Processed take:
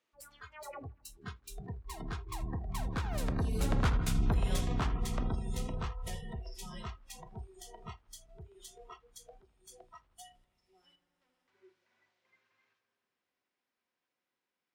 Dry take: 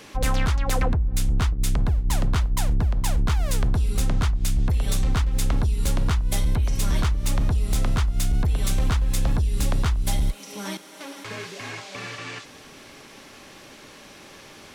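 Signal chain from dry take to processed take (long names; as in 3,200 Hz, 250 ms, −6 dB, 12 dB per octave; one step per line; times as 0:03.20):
source passing by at 0:04.06, 34 m/s, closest 21 metres
low-shelf EQ 130 Hz −10.5 dB
on a send: feedback echo with a low-pass in the loop 80 ms, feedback 82%, low-pass 3,500 Hz, level −10 dB
on the sum: noise reduction from a noise print of the clip's start 24 dB
high-shelf EQ 2,900 Hz −10.5 dB
one half of a high-frequency compander encoder only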